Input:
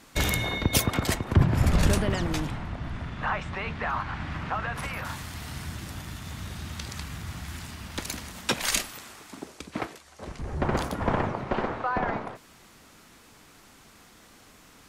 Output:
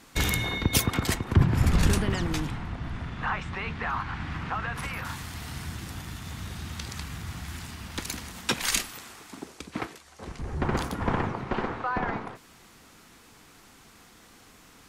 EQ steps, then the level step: notch 600 Hz, Q 12; dynamic EQ 620 Hz, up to -4 dB, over -45 dBFS, Q 1.8; 0.0 dB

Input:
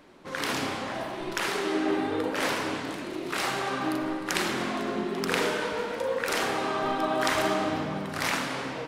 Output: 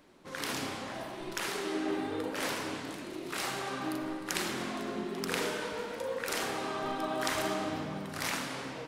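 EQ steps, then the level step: low shelf 380 Hz +3 dB; high shelf 4700 Hz +7.5 dB; -8.0 dB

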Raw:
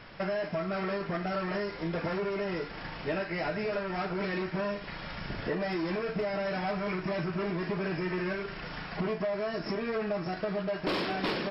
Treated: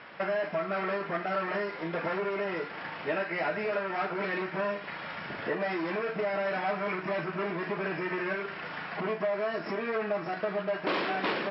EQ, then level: BPF 140–2700 Hz; low shelf 410 Hz -9.5 dB; notches 60/120/180 Hz; +5.0 dB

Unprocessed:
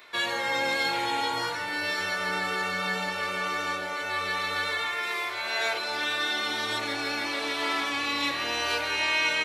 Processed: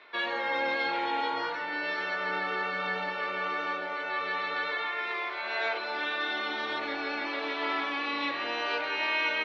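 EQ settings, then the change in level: air absorption 260 m; three-band isolator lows -23 dB, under 200 Hz, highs -16 dB, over 7200 Hz; 0.0 dB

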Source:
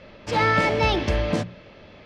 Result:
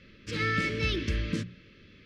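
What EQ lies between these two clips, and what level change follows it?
Butterworth band-stop 770 Hz, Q 0.7; -5.5 dB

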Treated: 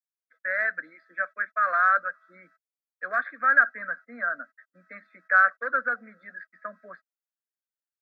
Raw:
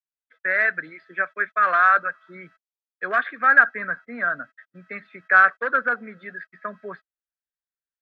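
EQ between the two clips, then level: HPF 270 Hz 12 dB/oct; fixed phaser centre 590 Hz, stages 8; -4.0 dB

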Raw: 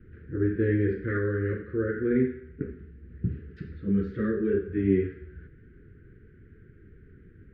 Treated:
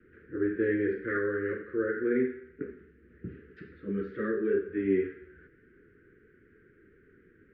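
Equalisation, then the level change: three-band isolator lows -17 dB, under 260 Hz, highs -17 dB, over 2600 Hz; high shelf 2500 Hz +8.5 dB; 0.0 dB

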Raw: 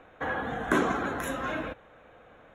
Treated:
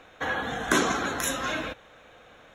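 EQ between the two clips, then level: high shelf 2800 Hz +7.5 dB; bell 5100 Hz +10 dB 1.1 oct; bell 14000 Hz +2.5 dB 2.9 oct; 0.0 dB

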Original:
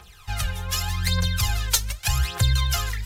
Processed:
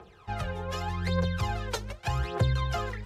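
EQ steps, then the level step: band-pass 390 Hz, Q 1.3; +9.0 dB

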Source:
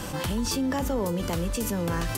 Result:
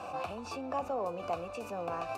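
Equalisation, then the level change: vowel filter a; bell 87 Hz +11.5 dB 0.37 oct; notch 3200 Hz, Q 5.1; +7.0 dB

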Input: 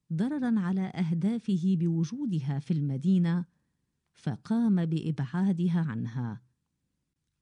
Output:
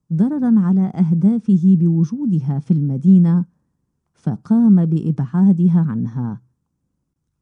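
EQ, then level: band shelf 2700 Hz -10 dB; high shelf 3700 Hz -9 dB; dynamic EQ 200 Hz, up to +6 dB, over -39 dBFS, Q 1.8; +8.5 dB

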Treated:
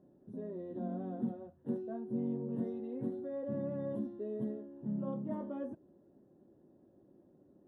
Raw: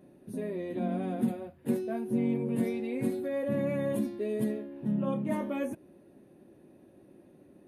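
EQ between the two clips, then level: running mean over 19 samples; -7.0 dB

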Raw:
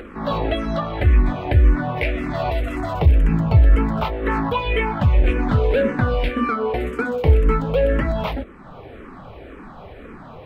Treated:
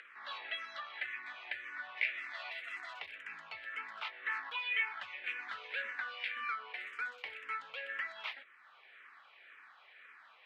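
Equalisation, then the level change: ladder band-pass 2200 Hz, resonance 40%; high shelf 3200 Hz +11.5 dB; -2.5 dB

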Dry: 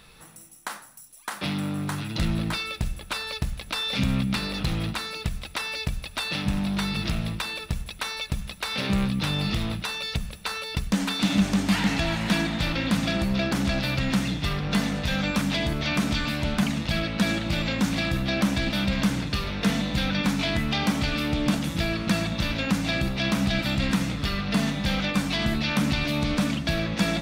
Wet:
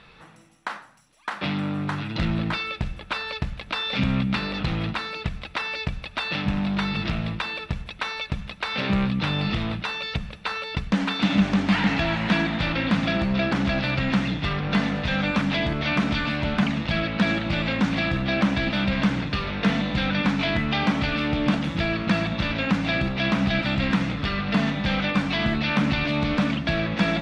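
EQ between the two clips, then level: LPF 3000 Hz 12 dB/oct; low shelf 88 Hz -8.5 dB; bell 360 Hz -2 dB 2.3 oct; +4.5 dB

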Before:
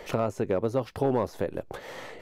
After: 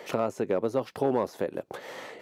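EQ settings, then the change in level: HPF 180 Hz 12 dB/oct; 0.0 dB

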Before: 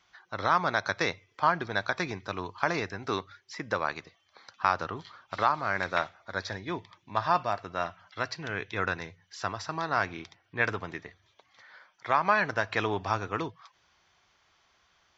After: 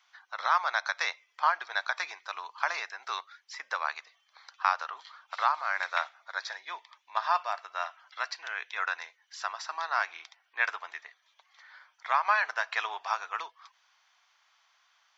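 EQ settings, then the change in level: HPF 790 Hz 24 dB/oct; 0.0 dB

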